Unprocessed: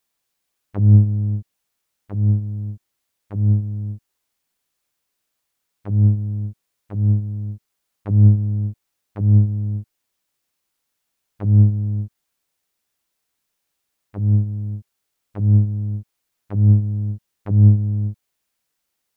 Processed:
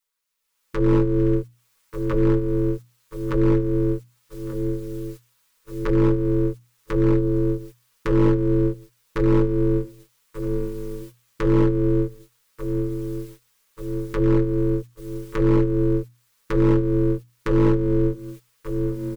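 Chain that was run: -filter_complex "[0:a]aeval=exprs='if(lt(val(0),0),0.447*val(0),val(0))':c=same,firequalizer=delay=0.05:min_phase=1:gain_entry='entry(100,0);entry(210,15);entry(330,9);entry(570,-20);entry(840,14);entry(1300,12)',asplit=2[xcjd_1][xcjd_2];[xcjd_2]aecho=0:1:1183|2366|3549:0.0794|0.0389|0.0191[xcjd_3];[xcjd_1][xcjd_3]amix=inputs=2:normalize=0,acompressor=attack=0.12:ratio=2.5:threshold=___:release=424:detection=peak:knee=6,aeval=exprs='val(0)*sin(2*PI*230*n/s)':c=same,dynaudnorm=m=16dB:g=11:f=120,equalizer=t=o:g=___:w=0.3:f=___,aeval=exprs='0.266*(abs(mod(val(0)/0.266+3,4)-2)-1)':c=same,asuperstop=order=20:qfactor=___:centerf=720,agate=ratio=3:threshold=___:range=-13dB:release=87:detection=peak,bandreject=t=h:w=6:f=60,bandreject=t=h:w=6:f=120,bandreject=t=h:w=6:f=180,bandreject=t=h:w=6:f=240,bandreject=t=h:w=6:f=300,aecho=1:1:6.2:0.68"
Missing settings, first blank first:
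-36dB, 8.5, 790, 3.2, -44dB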